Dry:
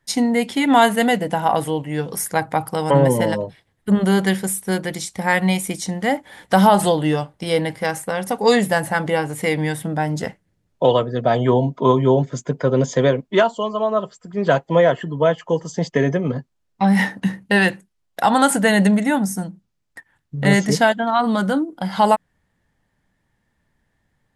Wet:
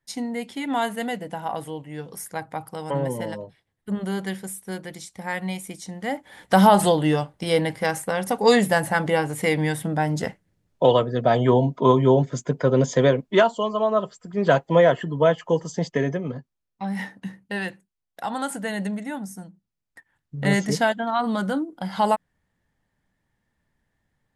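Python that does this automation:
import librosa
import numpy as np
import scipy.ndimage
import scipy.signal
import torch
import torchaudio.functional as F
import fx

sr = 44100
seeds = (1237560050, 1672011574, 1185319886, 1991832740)

y = fx.gain(x, sr, db=fx.line((5.88, -11.0), (6.57, -1.5), (15.6, -1.5), (16.83, -13.0), (19.48, -13.0), (20.38, -5.5)))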